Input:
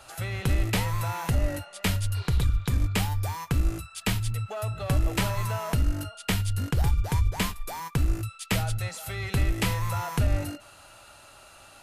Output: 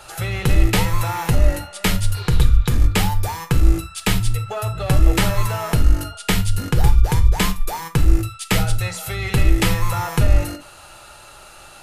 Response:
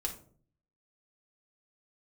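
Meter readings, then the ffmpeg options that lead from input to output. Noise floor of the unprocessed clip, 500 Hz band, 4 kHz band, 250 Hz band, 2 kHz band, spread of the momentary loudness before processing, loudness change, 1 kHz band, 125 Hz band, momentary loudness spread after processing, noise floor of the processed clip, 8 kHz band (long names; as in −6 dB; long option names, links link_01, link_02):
−51 dBFS, +8.5 dB, +8.0 dB, +8.5 dB, +8.0 dB, 6 LU, +8.0 dB, +8.0 dB, +7.5 dB, 7 LU, −43 dBFS, +8.0 dB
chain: -filter_complex "[0:a]asplit=2[link_01][link_02];[1:a]atrim=start_sample=2205,atrim=end_sample=3969[link_03];[link_02][link_03]afir=irnorm=-1:irlink=0,volume=-1dB[link_04];[link_01][link_04]amix=inputs=2:normalize=0,volume=3dB"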